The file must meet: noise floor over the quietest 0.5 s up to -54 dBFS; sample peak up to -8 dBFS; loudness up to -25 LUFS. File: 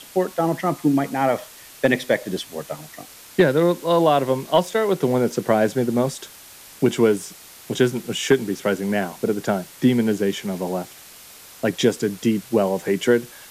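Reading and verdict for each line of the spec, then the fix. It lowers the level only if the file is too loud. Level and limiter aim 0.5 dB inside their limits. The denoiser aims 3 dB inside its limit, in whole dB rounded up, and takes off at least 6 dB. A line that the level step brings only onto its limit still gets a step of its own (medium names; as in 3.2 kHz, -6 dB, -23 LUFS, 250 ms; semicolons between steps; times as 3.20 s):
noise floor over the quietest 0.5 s -44 dBFS: fail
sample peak -5.5 dBFS: fail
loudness -21.5 LUFS: fail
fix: noise reduction 9 dB, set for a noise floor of -44 dBFS; trim -4 dB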